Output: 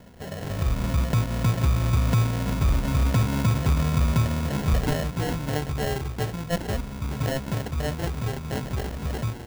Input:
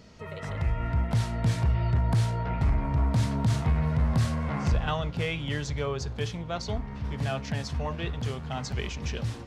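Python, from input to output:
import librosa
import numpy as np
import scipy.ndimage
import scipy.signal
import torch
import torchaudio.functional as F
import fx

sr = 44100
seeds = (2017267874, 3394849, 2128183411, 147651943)

y = scipy.signal.sosfilt(scipy.signal.butter(4, 6500.0, 'lowpass', fs=sr, output='sos'), x)
y = fx.peak_eq(y, sr, hz=1400.0, db=8.5, octaves=0.31)
y = fx.sample_hold(y, sr, seeds[0], rate_hz=1200.0, jitter_pct=0)
y = y * librosa.db_to_amplitude(3.0)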